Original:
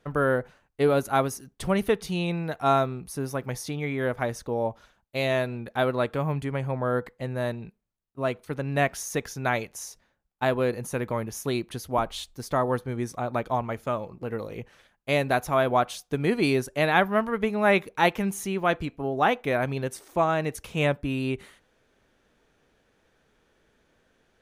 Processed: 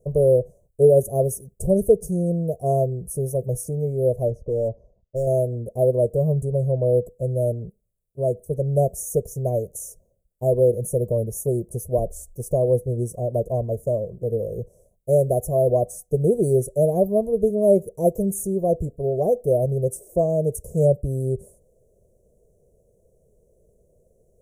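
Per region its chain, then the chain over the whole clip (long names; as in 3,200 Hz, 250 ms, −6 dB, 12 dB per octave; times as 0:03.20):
0:04.28–0:05.27: high-frequency loss of the air 290 metres + hard clipping −27 dBFS
whole clip: inverse Chebyshev band-stop filter 1,200–4,100 Hz, stop band 50 dB; dynamic equaliser 960 Hz, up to −5 dB, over −55 dBFS, Q 4.9; comb filter 1.8 ms, depth 86%; level +5.5 dB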